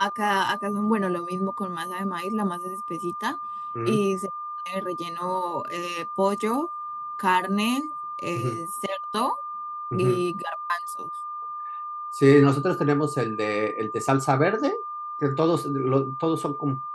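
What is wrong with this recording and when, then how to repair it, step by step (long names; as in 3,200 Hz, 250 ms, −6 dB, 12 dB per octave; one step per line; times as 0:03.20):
whistle 1,200 Hz −31 dBFS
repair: notch filter 1,200 Hz, Q 30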